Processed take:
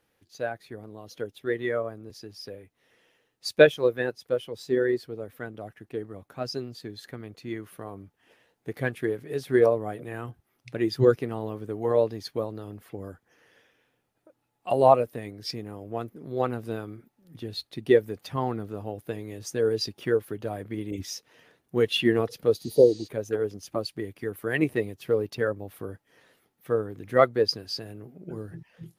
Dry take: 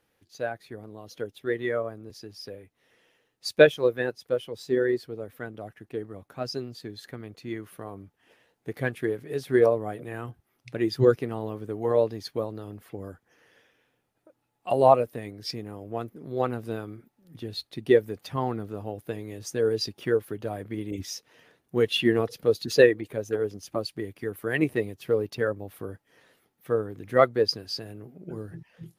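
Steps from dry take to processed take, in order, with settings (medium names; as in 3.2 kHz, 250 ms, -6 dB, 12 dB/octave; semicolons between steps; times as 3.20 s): spectral replace 22.63–23.05 s, 1–8.9 kHz before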